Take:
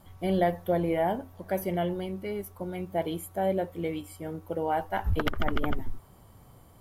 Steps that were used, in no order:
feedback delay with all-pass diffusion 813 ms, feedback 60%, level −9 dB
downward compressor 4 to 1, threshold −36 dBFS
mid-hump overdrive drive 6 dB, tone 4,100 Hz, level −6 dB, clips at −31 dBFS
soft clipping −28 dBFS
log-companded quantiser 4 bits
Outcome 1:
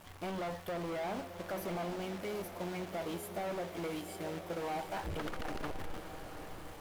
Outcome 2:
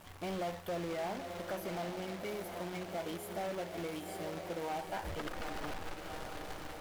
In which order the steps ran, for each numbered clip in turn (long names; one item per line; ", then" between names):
soft clipping, then log-companded quantiser, then mid-hump overdrive, then downward compressor, then feedback delay with all-pass diffusion
soft clipping, then feedback delay with all-pass diffusion, then downward compressor, then log-companded quantiser, then mid-hump overdrive